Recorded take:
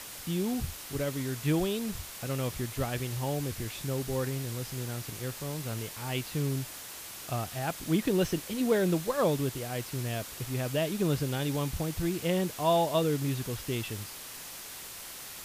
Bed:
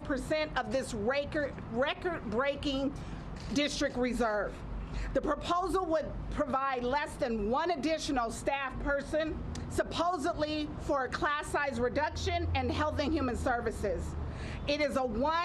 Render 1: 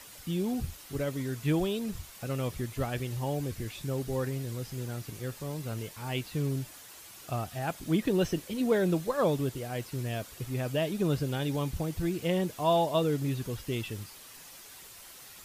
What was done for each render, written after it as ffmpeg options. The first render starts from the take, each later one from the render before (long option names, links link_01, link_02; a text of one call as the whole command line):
ffmpeg -i in.wav -af "afftdn=noise_reduction=8:noise_floor=-44" out.wav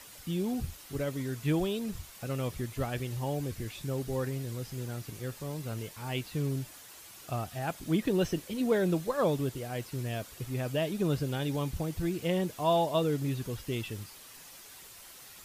ffmpeg -i in.wav -af "volume=-1dB" out.wav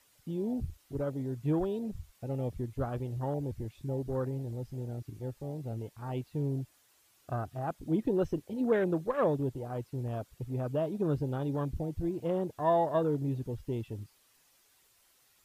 ffmpeg -i in.wav -af "afwtdn=0.0141,equalizer=frequency=180:width_type=o:width=0.3:gain=-5.5" out.wav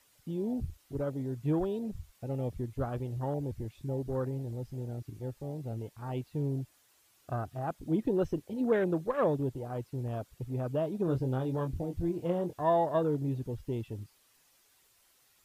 ffmpeg -i in.wav -filter_complex "[0:a]asettb=1/sr,asplit=3[link_01][link_02][link_03];[link_01]atrim=end=11.054[link_04];[link_02]atrim=start=11.05:end=12.62,asetpts=PTS-STARTPTS,afade=type=in:duration=0.004:curve=qsin,afade=type=out:start_time=1.566:duration=0.004:curve=qsin,asplit=2[link_05][link_06];[link_06]adelay=23,volume=-7dB[link_07];[link_05][link_07]amix=inputs=2:normalize=0,atrim=end_sample=69237[link_08];[link_03]atrim=start=12.616[link_09];[link_04][link_08]acrossfade=duration=0.004:curve1=hsin:curve2=qsin[link_10];[link_10][link_09]acrossfade=duration=0.004:curve1=qsin:curve2=hsin" out.wav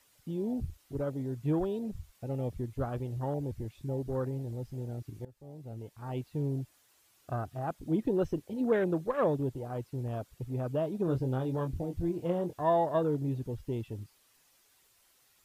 ffmpeg -i in.wav -filter_complex "[0:a]asplit=2[link_01][link_02];[link_01]atrim=end=5.25,asetpts=PTS-STARTPTS,afade=type=out:start_time=5.246:duration=0.004:curve=hsin:silence=0.11885[link_03];[link_02]atrim=start=5.25,asetpts=PTS-STARTPTS,afade=type=in:duration=0.96:silence=0.11885[link_04];[link_03][link_04]concat=n=2:v=0:a=1" out.wav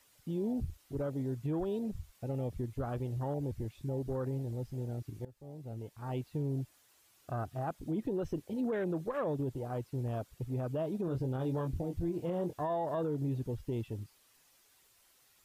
ffmpeg -i in.wav -af "alimiter=level_in=3dB:limit=-24dB:level=0:latency=1:release=53,volume=-3dB" out.wav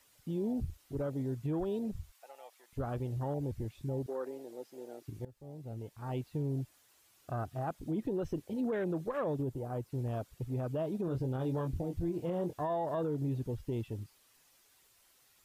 ffmpeg -i in.wav -filter_complex "[0:a]asettb=1/sr,asplit=3[link_01][link_02][link_03];[link_01]atrim=end=2.124[link_04];[link_02]atrim=start=2.12:end=2.73,asetpts=PTS-STARTPTS,afade=type=in:duration=0.004:curve=qsin,afade=type=out:start_time=0.606:duration=0.004:curve=qsin,highpass=frequency=780:width=0.5412,highpass=frequency=780:width=1.3066[link_05];[link_03]atrim=start=2.726[link_06];[link_04][link_05]acrossfade=duration=0.004:curve1=hsin:curve2=qsin[link_07];[link_07][link_06]acrossfade=duration=0.004:curve1=qsin:curve2=hsin,asettb=1/sr,asplit=3[link_08][link_09][link_10];[link_08]atrim=end=4.064[link_11];[link_09]atrim=start=4.06:end=5.08,asetpts=PTS-STARTPTS,afade=type=in:duration=0.004:curve=qsin,afade=type=out:start_time=1.016:duration=0.004:curve=qsin,highpass=frequency=320:width=0.5412,highpass=frequency=320:width=1.3066[link_12];[link_10]atrim=start=5.076[link_13];[link_11][link_12]acrossfade=duration=0.004:curve1=hsin:curve2=qsin[link_14];[link_14][link_13]acrossfade=duration=0.004:curve1=qsin:curve2=hsin,asettb=1/sr,asplit=3[link_15][link_16][link_17];[link_15]atrim=end=9.424[link_18];[link_16]atrim=start=9.42:end=9.9,asetpts=PTS-STARTPTS,afade=type=in:duration=0.004:curve=qsin,afade=type=out:start_time=0.476:duration=0.004:curve=qsin,equalizer=frequency=3200:width_type=o:width=2.3:gain=-5[link_19];[link_17]atrim=start=9.896[link_20];[link_18][link_19]acrossfade=duration=0.004:curve1=hsin:curve2=qsin[link_21];[link_21][link_20]acrossfade=duration=0.004:curve1=qsin:curve2=hsin" out.wav